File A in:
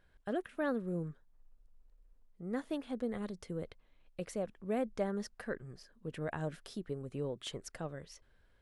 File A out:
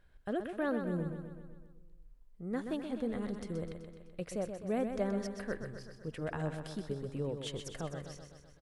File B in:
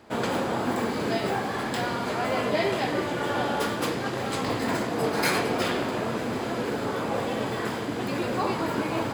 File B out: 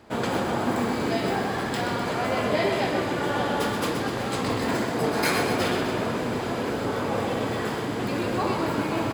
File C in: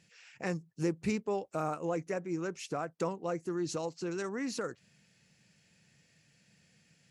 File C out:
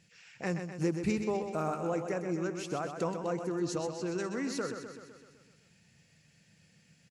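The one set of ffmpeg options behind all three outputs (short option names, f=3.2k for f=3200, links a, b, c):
-af "lowshelf=f=110:g=5.5,aecho=1:1:127|254|381|508|635|762|889|1016:0.422|0.253|0.152|0.0911|0.0547|0.0328|0.0197|0.0118"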